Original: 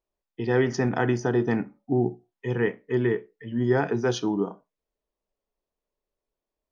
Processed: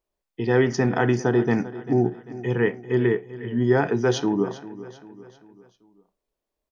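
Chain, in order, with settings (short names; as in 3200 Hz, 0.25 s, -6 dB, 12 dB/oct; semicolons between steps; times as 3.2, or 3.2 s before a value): feedback echo 0.394 s, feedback 47%, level -16 dB; gain +3 dB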